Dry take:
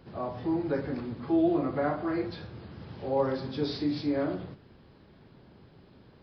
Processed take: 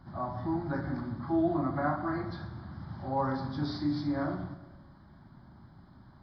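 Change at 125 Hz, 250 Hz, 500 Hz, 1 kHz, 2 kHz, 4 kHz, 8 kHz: +2.5 dB, -2.5 dB, -6.0 dB, +2.0 dB, +0.5 dB, -5.0 dB, n/a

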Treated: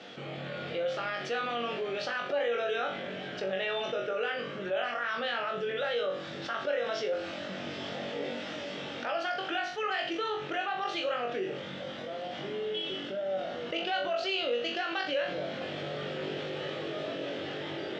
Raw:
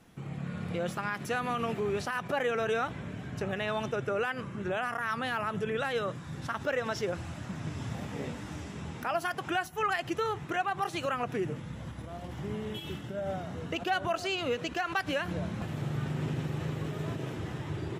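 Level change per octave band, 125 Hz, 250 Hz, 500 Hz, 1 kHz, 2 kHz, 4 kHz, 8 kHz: -12.0, -4.0, +2.0, -1.5, +0.5, +5.5, -6.5 dB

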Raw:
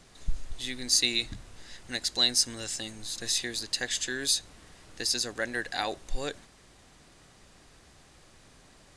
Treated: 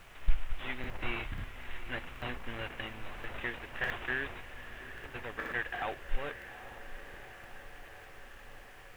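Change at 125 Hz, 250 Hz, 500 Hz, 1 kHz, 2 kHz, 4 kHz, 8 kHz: +1.5, -6.5, -4.5, -1.0, -0.5, -19.0, -31.5 dB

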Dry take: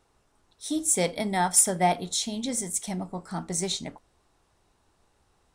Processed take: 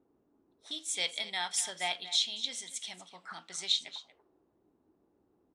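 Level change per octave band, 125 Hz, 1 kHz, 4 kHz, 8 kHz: under -25 dB, -14.0 dB, +3.5 dB, -11.5 dB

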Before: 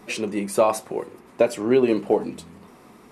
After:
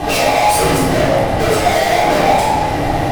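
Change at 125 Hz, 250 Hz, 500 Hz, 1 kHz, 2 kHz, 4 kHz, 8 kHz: +19.0, +6.0, +7.0, +17.5, +17.0, +18.0, +14.0 dB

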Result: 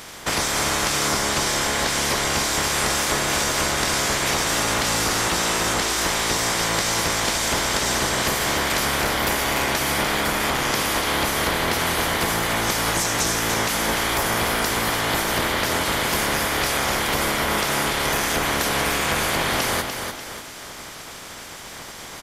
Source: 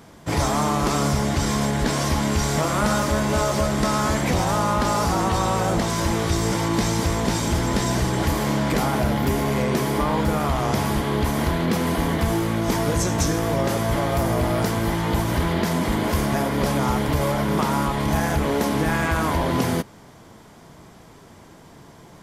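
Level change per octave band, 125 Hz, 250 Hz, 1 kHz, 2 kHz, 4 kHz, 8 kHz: -8.5, -6.5, +0.5, +7.0, +8.5, +8.0 dB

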